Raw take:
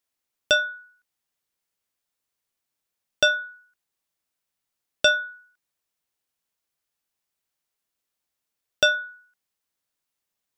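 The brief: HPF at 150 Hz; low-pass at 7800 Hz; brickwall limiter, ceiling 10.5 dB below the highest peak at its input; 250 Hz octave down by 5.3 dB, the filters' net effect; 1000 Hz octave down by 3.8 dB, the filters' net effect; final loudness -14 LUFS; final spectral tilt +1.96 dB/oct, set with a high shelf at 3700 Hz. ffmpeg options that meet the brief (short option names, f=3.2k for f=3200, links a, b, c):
-af "highpass=150,lowpass=7.8k,equalizer=f=250:t=o:g=-6,equalizer=f=1k:t=o:g=-9,highshelf=f=3.7k:g=3,volume=16dB,alimiter=limit=-2dB:level=0:latency=1"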